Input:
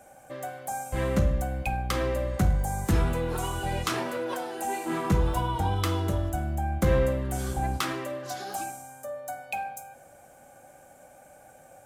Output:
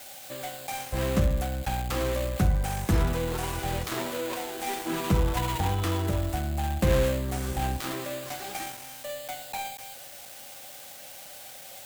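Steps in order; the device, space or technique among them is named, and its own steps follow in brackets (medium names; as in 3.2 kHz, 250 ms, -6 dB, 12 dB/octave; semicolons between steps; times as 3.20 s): budget class-D amplifier (dead-time distortion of 0.25 ms; zero-crossing glitches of -27 dBFS)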